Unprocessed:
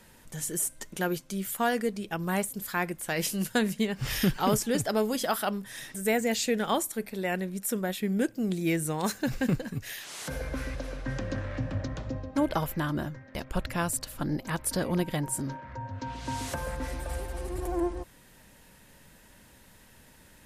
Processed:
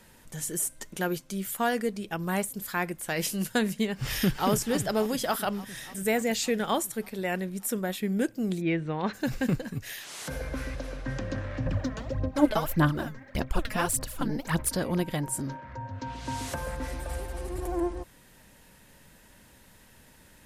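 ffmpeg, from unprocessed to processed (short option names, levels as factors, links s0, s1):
-filter_complex "[0:a]asplit=2[s0][s1];[s1]afade=t=in:st=3.93:d=0.01,afade=t=out:st=4.48:d=0.01,aecho=0:1:290|580|870|1160|1450|1740|2030|2320|2610|2900|3190|3480:0.199526|0.159621|0.127697|0.102157|0.0817259|0.0653808|0.0523046|0.0418437|0.0334749|0.02678|0.021424|0.0171392[s2];[s0][s2]amix=inputs=2:normalize=0,asplit=3[s3][s4][s5];[s3]afade=t=out:st=8.6:d=0.02[s6];[s4]lowpass=f=3400:w=0.5412,lowpass=f=3400:w=1.3066,afade=t=in:st=8.6:d=0.02,afade=t=out:st=9.13:d=0.02[s7];[s5]afade=t=in:st=9.13:d=0.02[s8];[s6][s7][s8]amix=inputs=3:normalize=0,asettb=1/sr,asplit=3[s9][s10][s11];[s9]atrim=end=11.664[s12];[s10]atrim=start=11.66:end=14.69,asetpts=PTS-STARTPTS,afade=t=in:d=0.004:c=qsin,afade=t=out:st=3.026:d=0.004:c=qsin,aphaser=in_gain=1:out_gain=1:delay=4.7:decay=0.68:speed=1.7:type=sinusoidal[s13];[s11]atrim=start=14.686[s14];[s12][s13]acrossfade=d=0.004:c1=hsin:c2=qsin[s15];[s15][s14]acrossfade=d=0.004:c1=qsin:c2=hsin"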